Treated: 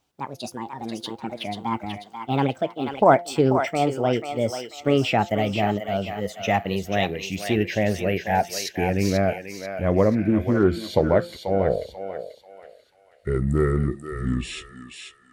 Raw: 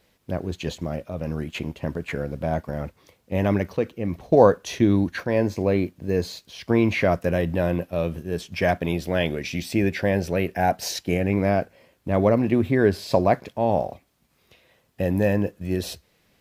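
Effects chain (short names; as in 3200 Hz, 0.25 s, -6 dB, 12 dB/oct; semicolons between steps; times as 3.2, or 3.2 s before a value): speed glide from 152% -> 62%; de-hum 173.4 Hz, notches 5; spectral noise reduction 9 dB; spectral repair 10.25–10.77, 1500–3300 Hz both; on a send: thinning echo 0.488 s, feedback 40%, high-pass 820 Hz, level -5 dB; on the sum: Doppler distortion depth 0.12 ms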